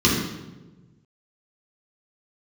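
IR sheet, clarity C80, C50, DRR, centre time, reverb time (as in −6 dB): 4.5 dB, 2.0 dB, −6.5 dB, 58 ms, 1.2 s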